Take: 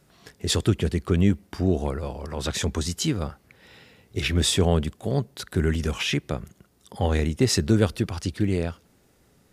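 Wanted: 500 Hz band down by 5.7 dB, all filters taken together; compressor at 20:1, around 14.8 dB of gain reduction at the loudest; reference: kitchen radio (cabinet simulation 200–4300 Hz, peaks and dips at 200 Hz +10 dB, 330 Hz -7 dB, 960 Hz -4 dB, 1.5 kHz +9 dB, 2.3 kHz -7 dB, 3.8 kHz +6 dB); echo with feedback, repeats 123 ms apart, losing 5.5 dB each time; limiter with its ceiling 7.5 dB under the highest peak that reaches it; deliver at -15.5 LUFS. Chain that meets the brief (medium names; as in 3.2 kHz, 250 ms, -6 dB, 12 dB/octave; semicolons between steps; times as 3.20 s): peaking EQ 500 Hz -5 dB; compression 20:1, threshold -30 dBFS; peak limiter -26.5 dBFS; cabinet simulation 200–4300 Hz, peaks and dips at 200 Hz +10 dB, 330 Hz -7 dB, 960 Hz -4 dB, 1.5 kHz +9 dB, 2.3 kHz -7 dB, 3.8 kHz +6 dB; feedback delay 123 ms, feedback 53%, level -5.5 dB; trim +23 dB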